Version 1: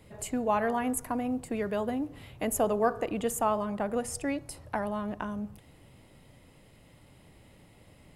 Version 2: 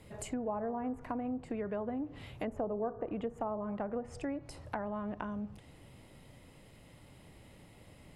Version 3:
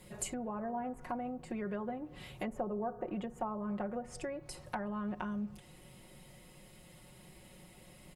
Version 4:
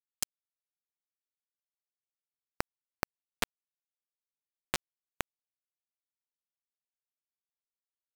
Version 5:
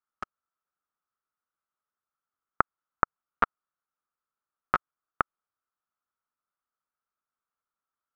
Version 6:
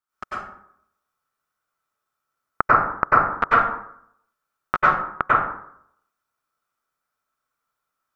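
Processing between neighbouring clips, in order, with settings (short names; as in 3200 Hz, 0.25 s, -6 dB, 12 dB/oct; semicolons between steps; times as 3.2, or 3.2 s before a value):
treble ducked by the level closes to 800 Hz, closed at -24.5 dBFS; dynamic EQ 4300 Hz, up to -4 dB, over -51 dBFS, Q 0.74; compressor 2:1, threshold -38 dBFS, peak gain reduction 9 dB
high shelf 5100 Hz +9 dB; comb 5.5 ms, depth 70%; gain -2 dB
octaver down 2 oct, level 0 dB; flange 0.89 Hz, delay 0.7 ms, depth 1.9 ms, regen -65%; bit-crush 5-bit; gain +13 dB
synth low-pass 1300 Hz, resonance Q 6.7; gain +3.5 dB
plate-style reverb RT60 0.69 s, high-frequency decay 0.55×, pre-delay 85 ms, DRR -9.5 dB; gain +1.5 dB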